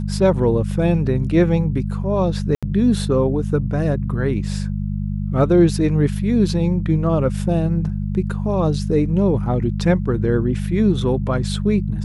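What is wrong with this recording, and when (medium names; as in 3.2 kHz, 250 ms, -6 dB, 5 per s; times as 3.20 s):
hum 50 Hz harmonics 4 -23 dBFS
2.55–2.63 s: dropout 76 ms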